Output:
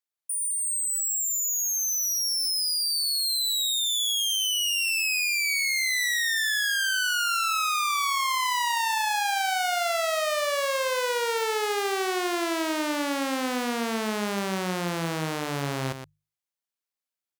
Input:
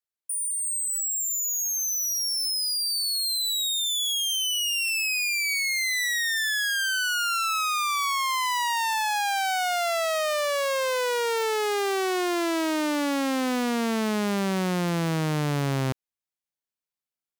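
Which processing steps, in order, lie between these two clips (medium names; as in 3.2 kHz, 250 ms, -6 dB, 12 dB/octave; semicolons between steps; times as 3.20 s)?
bass shelf 300 Hz -8 dB; hum notches 50/100/150 Hz; delay 119 ms -9 dB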